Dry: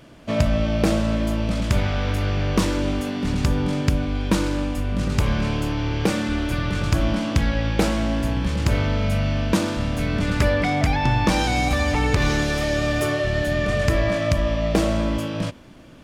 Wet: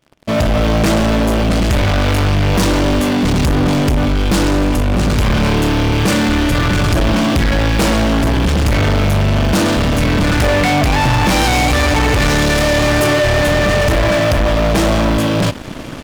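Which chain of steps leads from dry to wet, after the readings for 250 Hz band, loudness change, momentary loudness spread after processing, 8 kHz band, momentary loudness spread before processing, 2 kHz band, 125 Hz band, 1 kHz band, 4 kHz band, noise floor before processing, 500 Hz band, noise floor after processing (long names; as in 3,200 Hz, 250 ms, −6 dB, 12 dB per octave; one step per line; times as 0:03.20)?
+8.0 dB, +8.5 dB, 2 LU, +10.5 dB, 4 LU, +9.5 dB, +7.5 dB, +9.5 dB, +10.5 dB, −37 dBFS, +8.5 dB, −21 dBFS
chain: automatic gain control
leveller curve on the samples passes 5
level −8.5 dB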